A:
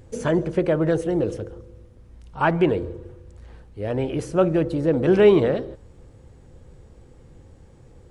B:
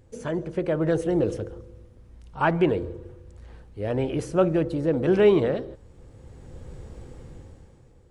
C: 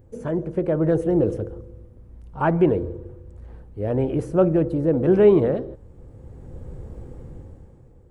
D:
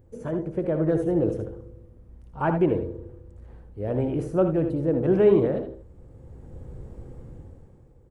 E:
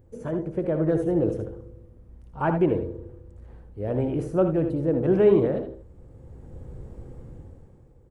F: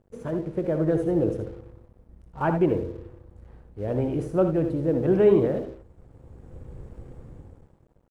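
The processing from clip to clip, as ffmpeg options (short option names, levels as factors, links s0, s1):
-af "dynaudnorm=f=130:g=13:m=5.62,volume=0.398"
-af "equalizer=f=4600:w=0.35:g=-14.5,volume=1.68"
-af "aecho=1:1:64|79:0.266|0.335,volume=0.631"
-af anull
-af "aeval=exprs='sgn(val(0))*max(abs(val(0))-0.00211,0)':c=same"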